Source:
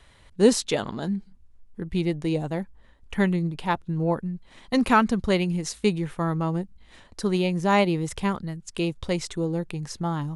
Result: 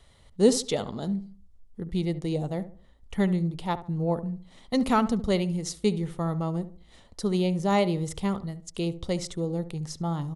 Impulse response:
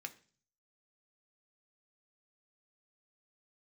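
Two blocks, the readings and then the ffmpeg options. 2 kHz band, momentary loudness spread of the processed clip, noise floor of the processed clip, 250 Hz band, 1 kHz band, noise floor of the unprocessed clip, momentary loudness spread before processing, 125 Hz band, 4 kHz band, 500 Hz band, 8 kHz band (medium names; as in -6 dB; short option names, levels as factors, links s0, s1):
-8.5 dB, 12 LU, -55 dBFS, -2.0 dB, -4.5 dB, -54 dBFS, 13 LU, -1.5 dB, -3.0 dB, -2.0 dB, -1.5 dB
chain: -filter_complex "[0:a]equalizer=f=315:t=o:w=0.33:g=-4,equalizer=f=1000:t=o:w=0.33:g=-5,equalizer=f=1600:t=o:w=0.33:g=-11,equalizer=f=2500:t=o:w=0.33:g=-8,asplit=2[s0][s1];[s1]adelay=71,lowpass=f=1400:p=1,volume=0.224,asplit=2[s2][s3];[s3]adelay=71,lowpass=f=1400:p=1,volume=0.36,asplit=2[s4][s5];[s5]adelay=71,lowpass=f=1400:p=1,volume=0.36,asplit=2[s6][s7];[s7]adelay=71,lowpass=f=1400:p=1,volume=0.36[s8];[s2][s4][s6][s8]amix=inputs=4:normalize=0[s9];[s0][s9]amix=inputs=2:normalize=0,volume=0.841"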